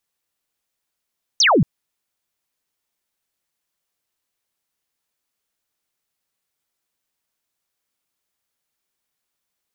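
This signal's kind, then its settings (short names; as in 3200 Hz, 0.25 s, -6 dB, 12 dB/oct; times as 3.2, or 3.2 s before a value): laser zap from 6500 Hz, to 120 Hz, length 0.23 s sine, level -11 dB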